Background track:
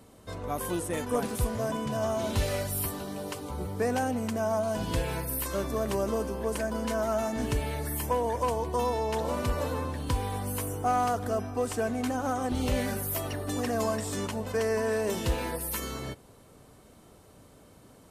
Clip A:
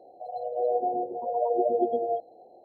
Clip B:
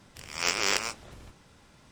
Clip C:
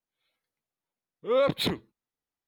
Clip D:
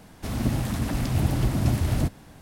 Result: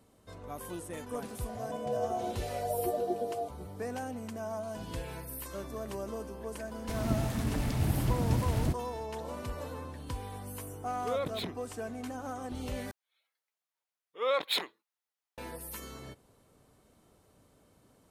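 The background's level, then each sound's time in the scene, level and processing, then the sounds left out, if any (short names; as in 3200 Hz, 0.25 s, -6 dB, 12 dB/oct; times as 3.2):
background track -9.5 dB
1.28 add A -7.5 dB
6.65 add D -6 dB
9.77 add C -10 dB
12.91 replace with C -0.5 dB + HPF 710 Hz
not used: B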